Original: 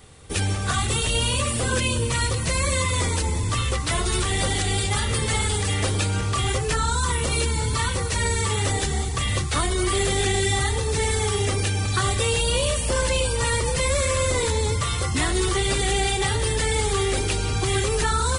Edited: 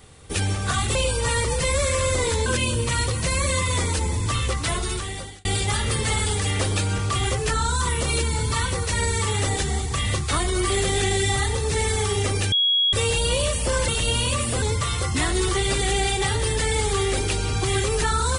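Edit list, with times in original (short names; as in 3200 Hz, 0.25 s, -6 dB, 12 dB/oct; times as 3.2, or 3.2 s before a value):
0.95–1.69 swap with 13.11–14.62
3.85–4.68 fade out
11.75–12.16 bleep 3320 Hz -16.5 dBFS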